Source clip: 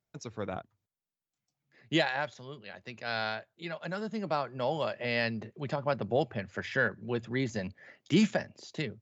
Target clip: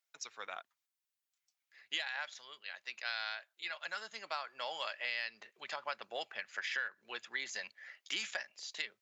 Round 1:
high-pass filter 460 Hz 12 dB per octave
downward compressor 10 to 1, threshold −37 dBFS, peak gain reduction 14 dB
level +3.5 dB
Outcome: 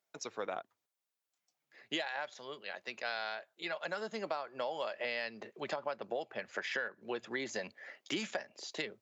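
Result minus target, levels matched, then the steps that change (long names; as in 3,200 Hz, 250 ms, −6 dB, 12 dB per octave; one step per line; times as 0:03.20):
500 Hz band +9.0 dB
change: high-pass filter 1,500 Hz 12 dB per octave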